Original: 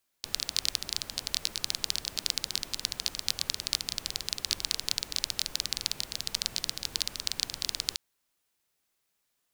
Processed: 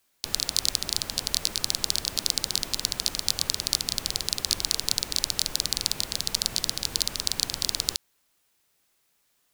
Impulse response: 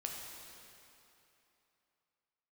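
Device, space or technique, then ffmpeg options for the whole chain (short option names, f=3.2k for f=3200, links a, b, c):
one-band saturation: -filter_complex "[0:a]acrossover=split=490|4900[a][b][c];[b]asoftclip=type=tanh:threshold=-23.5dB[d];[a][d][c]amix=inputs=3:normalize=0,volume=8dB"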